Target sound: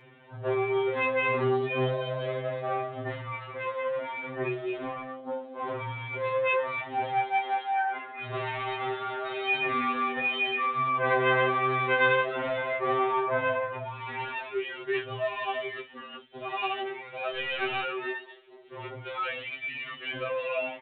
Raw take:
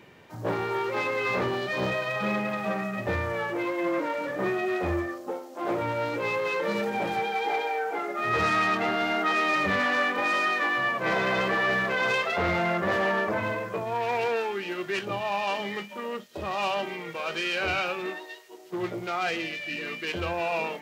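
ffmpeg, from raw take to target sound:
-filter_complex "[0:a]asettb=1/sr,asplit=3[a][b][c];[a]atrim=end=17.354[d];[b]atrim=start=17.35:end=17.84,asetpts=PTS-STARTPTS,afade=t=in:d=0.004:c=qsin,afade=t=out:st=0.486:d=0.004:c=qsin,acrusher=bits=6:dc=4:mix=0:aa=0.000001[e];[c]atrim=start=17.836[f];[d][e]acrossfade=d=0.004:c1=hsin:c2=qsin[g];[g][f]acrossfade=d=0.004:c1=qsin:c2=hsin,aresample=8000,aresample=44100,afftfilt=real='re*2.45*eq(mod(b,6),0)':imag='im*2.45*eq(mod(b,6),0)':win_size=2048:overlap=0.75"

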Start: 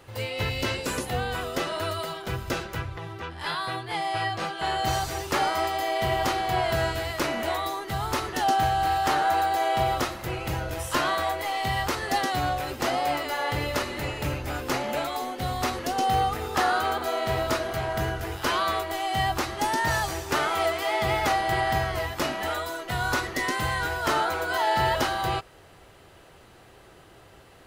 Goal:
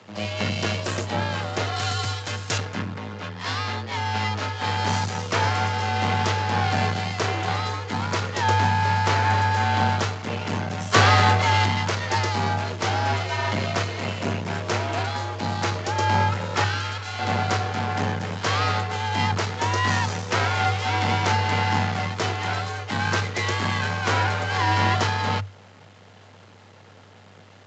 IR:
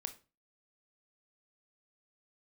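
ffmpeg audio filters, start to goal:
-filter_complex "[0:a]asettb=1/sr,asplit=3[a][b][c];[a]atrim=end=1.764[d];[b]atrim=start=1.76:end=2.58,asetpts=PTS-STARTPTS,afade=t=in:d=0.004:c=qsin,afade=t=out:st=0.816:d=0.004:c=qsin,aemphasis=mode=production:type=riaa[e];[c]atrim=start=2.576[f];[d][e]acrossfade=d=0.004:c1=hsin:c2=qsin[g];[g][f]acrossfade=d=0.004:c1=qsin:c2=hsin,asplit=3[h][i][j];[h]afade=t=out:st=10.92:d=0.02[k];[i]acontrast=78,afade=t=in:st=10.92:d=0.02,afade=t=out:st=11.64:d=0.02[l];[j]afade=t=in:st=11.64:d=0.02[m];[k][l][m]amix=inputs=3:normalize=0,asettb=1/sr,asplit=3[n][o][p];[n]atrim=end=16.644[q];[o]atrim=start=16.64:end=17.19,asetpts=PTS-STARTPTS,afade=t=in:d=0.004:c=qsin,afade=t=out:st=0.546:d=0.004:c=qsin,highpass=1.3k[r];[p]atrim=start=17.186[s];[q][r]acrossfade=d=0.004:c1=hsin:c2=qsin[t];[t][s]acrossfade=d=0.004:c1=qsin:c2=hsin,aeval=exprs='max(val(0),0)':c=same,afreqshift=98,aresample=16000,aresample=44100,volume=6dB"

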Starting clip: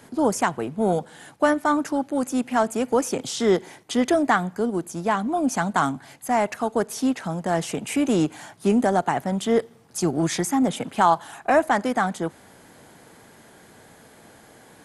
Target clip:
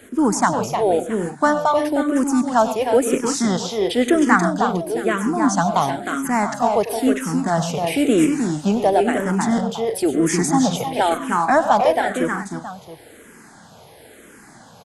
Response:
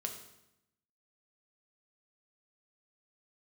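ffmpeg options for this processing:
-filter_complex "[0:a]asplit=2[a][b];[b]aecho=0:1:99|116|138|310|350|670:0.2|0.1|0.15|0.562|0.211|0.178[c];[a][c]amix=inputs=2:normalize=0,asplit=2[d][e];[e]afreqshift=-0.99[f];[d][f]amix=inputs=2:normalize=1,volume=6dB"

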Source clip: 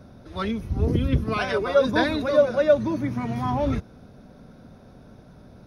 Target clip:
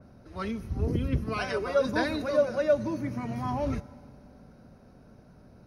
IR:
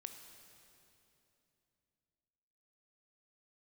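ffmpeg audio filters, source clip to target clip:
-filter_complex "[0:a]bandreject=f=3.5k:w=5.4,asplit=2[a][b];[1:a]atrim=start_sample=2205,asetrate=57330,aresample=44100[c];[b][c]afir=irnorm=-1:irlink=0,volume=-1.5dB[d];[a][d]amix=inputs=2:normalize=0,adynamicequalizer=threshold=0.0158:dfrequency=3300:dqfactor=0.7:tfrequency=3300:tqfactor=0.7:attack=5:release=100:ratio=0.375:range=2.5:mode=boostabove:tftype=highshelf,volume=-8.5dB"

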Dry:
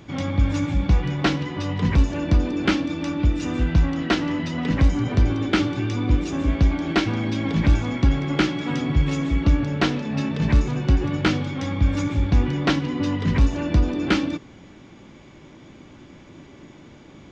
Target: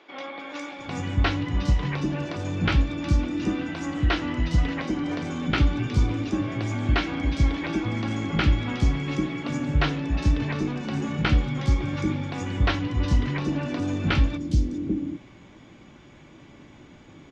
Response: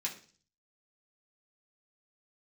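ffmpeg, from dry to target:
-filter_complex "[0:a]acrossover=split=370|5200[a][b][c];[c]adelay=410[d];[a]adelay=790[e];[e][b][d]amix=inputs=3:normalize=0,asplit=2[f][g];[1:a]atrim=start_sample=2205[h];[g][h]afir=irnorm=-1:irlink=0,volume=-15dB[i];[f][i]amix=inputs=2:normalize=0,volume=-2.5dB" -ar 48000 -c:a libopus -b:a 48k

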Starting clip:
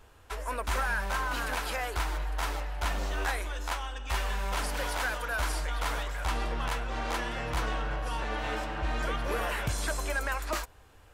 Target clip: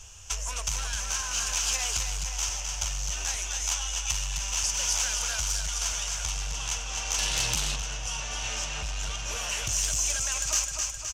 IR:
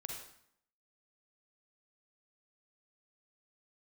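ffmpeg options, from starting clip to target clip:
-filter_complex "[0:a]firequalizer=gain_entry='entry(100,0);entry(250,-17);entry(690,-8);entry(2800,-4);entry(4000,-17);entry(6100,5);entry(9600,-16);entry(14000,-20)':delay=0.05:min_phase=1,acompressor=threshold=-39dB:ratio=4,asplit=2[a][b];[b]aecho=0:1:260|520|780|1040|1300|1560|1820:0.562|0.315|0.176|0.0988|0.0553|0.031|0.0173[c];[a][c]amix=inputs=2:normalize=0,asettb=1/sr,asplit=3[d][e][f];[d]atrim=end=7.184[g];[e]atrim=start=7.18:end=7.76,asetpts=PTS-STARTPTS,afade=t=in:d=0.004:c=qsin,afade=t=out:st=0.576:d=0.004:c=qsin,acontrast=23[h];[f]atrim=start=7.756[i];[g][h]acrossfade=d=0.004:c1=hsin:c2=qsin[j];[j][i]acrossfade=d=0.004:c1=qsin:c2=hsin,highshelf=f=9k:g=-8.5,aeval=exprs='0.0631*sin(PI/2*2.82*val(0)/0.0631)':c=same,aexciter=amount=7.1:drive=5.9:freq=2.8k,volume=-5.5dB"

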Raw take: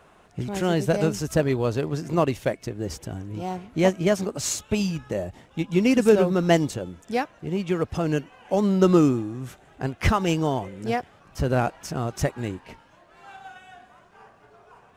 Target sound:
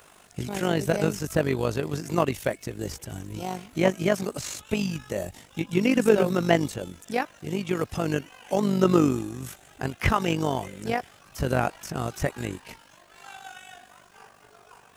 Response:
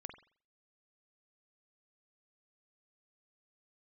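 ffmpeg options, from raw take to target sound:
-filter_complex "[0:a]tremolo=f=49:d=0.667,acrossover=split=2600[a][b];[b]acompressor=threshold=-53dB:ratio=4:attack=1:release=60[c];[a][c]amix=inputs=2:normalize=0,crystalizer=i=5.5:c=0"

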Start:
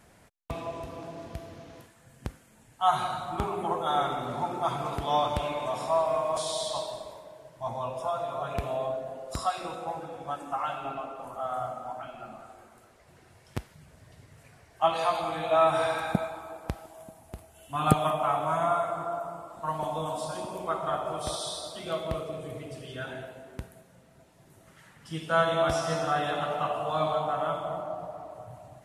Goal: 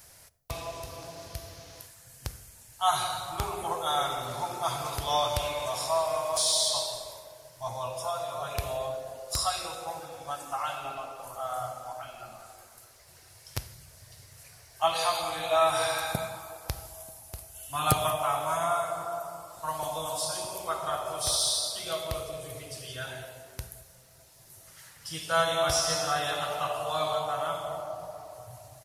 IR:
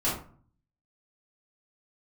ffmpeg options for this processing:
-filter_complex "[0:a]firequalizer=gain_entry='entry(120,0);entry(200,-12);entry(500,-3);entry(4200,7)':delay=0.05:min_phase=1,aexciter=amount=1.2:drive=8.4:freq=4.6k,asplit=2[a][b];[1:a]atrim=start_sample=2205,asetrate=24696,aresample=44100[c];[b][c]afir=irnorm=-1:irlink=0,volume=-29.5dB[d];[a][d]amix=inputs=2:normalize=0"

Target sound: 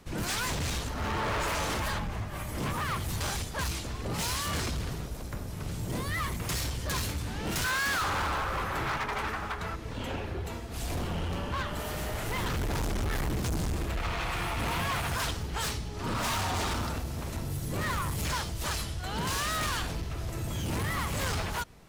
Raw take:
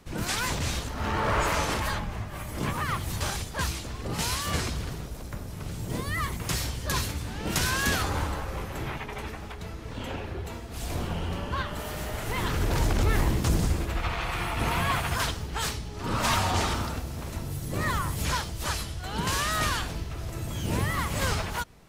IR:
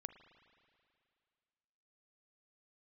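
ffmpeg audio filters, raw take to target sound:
-filter_complex "[0:a]asettb=1/sr,asplit=3[a][b][c];[a]atrim=end=7.644[d];[b]atrim=start=7.64:end=9.76,asetpts=PTS-STARTPTS,afade=t=in:d=0.004:c=qsin,afade=t=out:st=2.116:d=0.004:c=qsin,equalizer=f=1.3k:w=0.92:g=12.5[e];[c]atrim=start=9.756[f];[d][e]acrossfade=d=0.004:c1=hsin:c2=qsin[g];[g][f]acrossfade=d=0.004:c1=qsin:c2=hsin,volume=28dB,asoftclip=hard,volume=-28dB"

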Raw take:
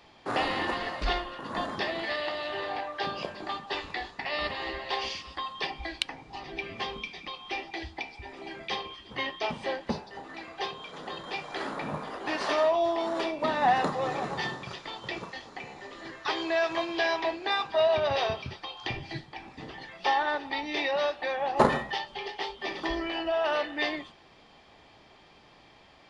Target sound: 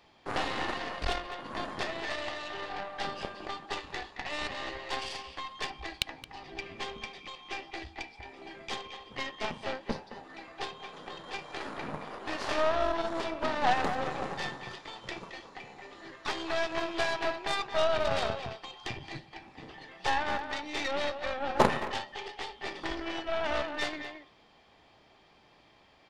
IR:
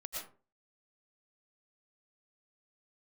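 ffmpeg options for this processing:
-filter_complex "[0:a]asplit=2[a][b];[b]adelay=220,highpass=300,lowpass=3.4k,asoftclip=type=hard:threshold=-20dB,volume=-7dB[c];[a][c]amix=inputs=2:normalize=0,aeval=exprs='0.335*(cos(1*acos(clip(val(0)/0.335,-1,1)))-cos(1*PI/2))+0.0531*(cos(3*acos(clip(val(0)/0.335,-1,1)))-cos(3*PI/2))+0.0266*(cos(8*acos(clip(val(0)/0.335,-1,1)))-cos(8*PI/2))':c=same"

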